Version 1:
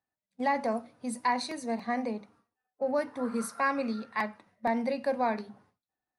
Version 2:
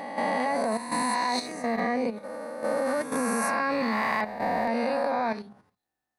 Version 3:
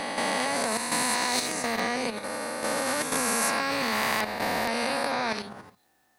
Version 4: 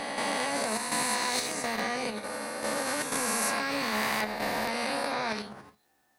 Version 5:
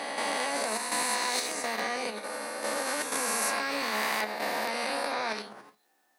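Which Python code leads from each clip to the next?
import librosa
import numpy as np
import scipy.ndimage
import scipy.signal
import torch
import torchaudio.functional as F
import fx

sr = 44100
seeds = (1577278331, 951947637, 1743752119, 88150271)

y1 = fx.spec_swells(x, sr, rise_s=2.33)
y1 = fx.level_steps(y1, sr, step_db=10)
y1 = F.gain(torch.from_numpy(y1), 3.5).numpy()
y2 = fx.low_shelf(y1, sr, hz=83.0, db=-9.0)
y2 = fx.spectral_comp(y2, sr, ratio=2.0)
y3 = fx.comb_fb(y2, sr, f0_hz=71.0, decay_s=0.16, harmonics='all', damping=0.0, mix_pct=80)
y3 = F.gain(torch.from_numpy(y3), 1.5).numpy()
y4 = scipy.signal.sosfilt(scipy.signal.butter(2, 290.0, 'highpass', fs=sr, output='sos'), y3)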